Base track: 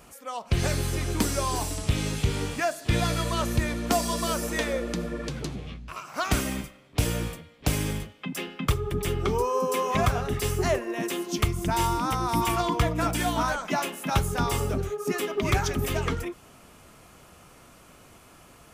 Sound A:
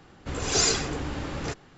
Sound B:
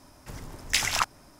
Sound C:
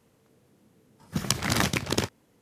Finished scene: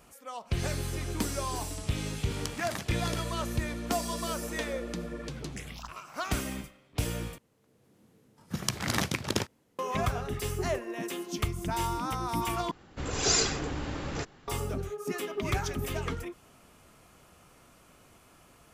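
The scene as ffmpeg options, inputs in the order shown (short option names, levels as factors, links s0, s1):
-filter_complex "[3:a]asplit=2[s0][s1];[0:a]volume=0.501[s2];[2:a]asplit=2[s3][s4];[s4]afreqshift=2.4[s5];[s3][s5]amix=inputs=2:normalize=1[s6];[s1]dynaudnorm=f=170:g=7:m=3.76[s7];[s2]asplit=3[s8][s9][s10];[s8]atrim=end=7.384[s11];[s7]atrim=end=2.41,asetpts=PTS-STARTPTS,volume=0.501[s12];[s9]atrim=start=9.786:end=12.714[s13];[1:a]atrim=end=1.77,asetpts=PTS-STARTPTS,volume=0.75[s14];[s10]atrim=start=14.476[s15];[s0]atrim=end=2.41,asetpts=PTS-STARTPTS,volume=0.224,afade=t=in:d=0.004:c=hsin,afade=t=out:st=2.406:d=0.004:c=hsin,adelay=1150[s16];[s6]atrim=end=1.39,asetpts=PTS-STARTPTS,volume=0.133,afade=t=in:d=0.004:c=hsin,afade=t=out:st=1.386:d=0.004:c=hsin,adelay=4830[s17];[s11][s12]acrossfade=d=0.004:c1=hsin:c2=hsin[s18];[s18][s13]acrossfade=d=0.004:c1=hsin:c2=hsin[s19];[s19][s14]acrossfade=d=0.004:c1=hsin:c2=hsin[s20];[s20][s15]acrossfade=d=0.004:c1=hsin:c2=hsin[s21];[s21][s16][s17]amix=inputs=3:normalize=0"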